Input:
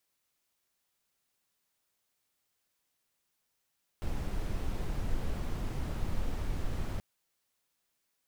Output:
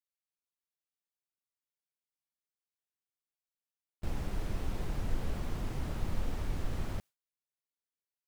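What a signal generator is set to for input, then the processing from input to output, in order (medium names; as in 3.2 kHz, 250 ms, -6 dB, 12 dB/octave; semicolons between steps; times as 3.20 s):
noise brown, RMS -32 dBFS 2.98 s
gate with hold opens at -34 dBFS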